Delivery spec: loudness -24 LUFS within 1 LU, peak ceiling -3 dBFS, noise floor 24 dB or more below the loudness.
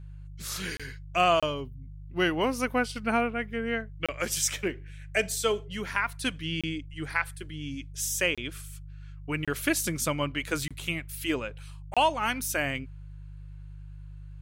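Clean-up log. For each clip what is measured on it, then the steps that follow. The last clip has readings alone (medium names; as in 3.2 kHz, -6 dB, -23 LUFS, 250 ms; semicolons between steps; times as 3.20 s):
dropouts 8; longest dropout 26 ms; hum 50 Hz; highest harmonic 150 Hz; hum level -41 dBFS; loudness -29.5 LUFS; peak level -11.0 dBFS; loudness target -24.0 LUFS
-> interpolate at 0.77/1.40/4.06/6.61/8.35/9.45/10.68/11.94 s, 26 ms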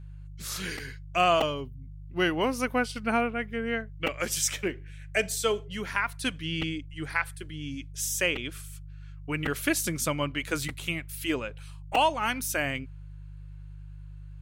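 dropouts 0; hum 50 Hz; highest harmonic 150 Hz; hum level -41 dBFS
-> de-hum 50 Hz, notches 3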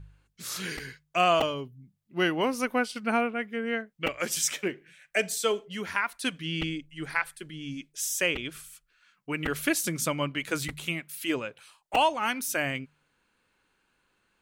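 hum not found; loudness -29.5 LUFS; peak level -11.5 dBFS; loudness target -24.0 LUFS
-> trim +5.5 dB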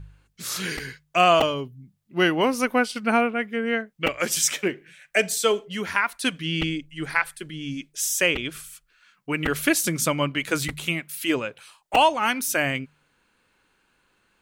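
loudness -24.0 LUFS; peak level -6.0 dBFS; noise floor -68 dBFS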